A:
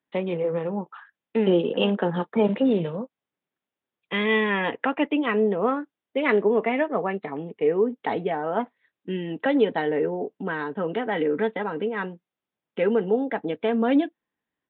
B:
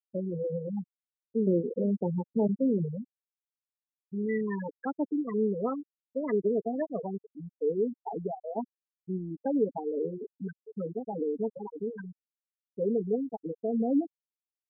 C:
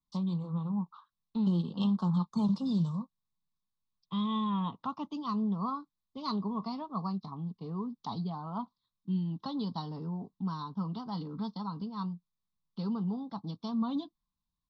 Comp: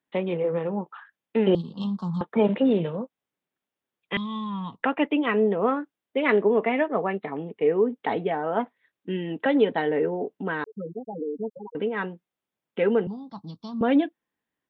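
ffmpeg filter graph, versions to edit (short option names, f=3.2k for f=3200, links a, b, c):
-filter_complex "[2:a]asplit=3[a][b][c];[0:a]asplit=5[d][e][f][g][h];[d]atrim=end=1.552[i];[a]atrim=start=1.548:end=2.212[j];[e]atrim=start=2.208:end=4.172[k];[b]atrim=start=4.168:end=4.832[l];[f]atrim=start=4.828:end=10.642[m];[1:a]atrim=start=10.638:end=11.752[n];[g]atrim=start=11.748:end=13.072[o];[c]atrim=start=13.068:end=13.812[p];[h]atrim=start=13.808[q];[i][j]acrossfade=d=0.004:c1=hsin:c2=hsin[r];[r][k]acrossfade=d=0.004:c1=hsin:c2=hsin[s];[s][l]acrossfade=d=0.004:c1=hsin:c2=hsin[t];[t][m]acrossfade=d=0.004:c1=hsin:c2=hsin[u];[u][n]acrossfade=d=0.004:c1=hsin:c2=hsin[v];[v][o]acrossfade=d=0.004:c1=hsin:c2=hsin[w];[w][p]acrossfade=d=0.004:c1=hsin:c2=hsin[x];[x][q]acrossfade=d=0.004:c1=hsin:c2=hsin"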